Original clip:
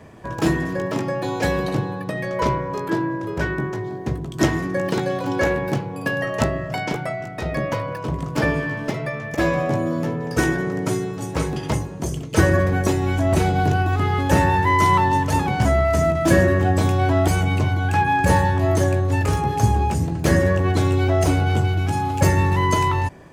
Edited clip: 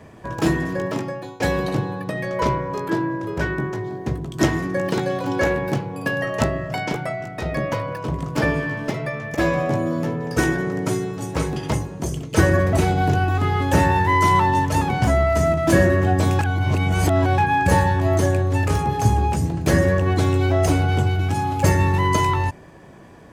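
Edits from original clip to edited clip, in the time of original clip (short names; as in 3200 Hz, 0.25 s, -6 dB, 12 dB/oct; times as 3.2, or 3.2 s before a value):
0.88–1.4 fade out, to -20 dB
12.73–13.31 cut
16.97–17.96 reverse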